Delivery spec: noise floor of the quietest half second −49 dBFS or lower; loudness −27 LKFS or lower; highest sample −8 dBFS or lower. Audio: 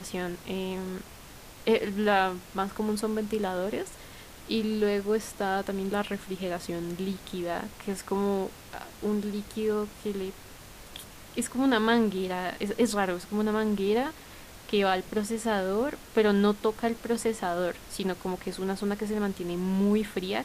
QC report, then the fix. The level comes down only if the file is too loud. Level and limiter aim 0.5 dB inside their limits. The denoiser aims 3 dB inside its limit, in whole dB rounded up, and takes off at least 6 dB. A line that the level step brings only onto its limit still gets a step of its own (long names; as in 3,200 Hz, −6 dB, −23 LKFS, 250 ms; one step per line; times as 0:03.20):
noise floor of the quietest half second −47 dBFS: out of spec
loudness −29.5 LKFS: in spec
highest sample −11.5 dBFS: in spec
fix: broadband denoise 6 dB, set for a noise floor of −47 dBFS